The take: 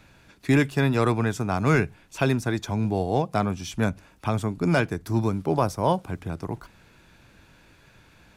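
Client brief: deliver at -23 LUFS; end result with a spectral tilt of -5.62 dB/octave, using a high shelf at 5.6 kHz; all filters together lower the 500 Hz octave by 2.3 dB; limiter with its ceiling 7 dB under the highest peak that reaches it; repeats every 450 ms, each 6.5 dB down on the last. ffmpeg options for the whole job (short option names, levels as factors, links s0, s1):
-af "equalizer=f=500:t=o:g=-3,highshelf=f=5600:g=9,alimiter=limit=0.15:level=0:latency=1,aecho=1:1:450|900|1350|1800|2250|2700:0.473|0.222|0.105|0.0491|0.0231|0.0109,volume=1.68"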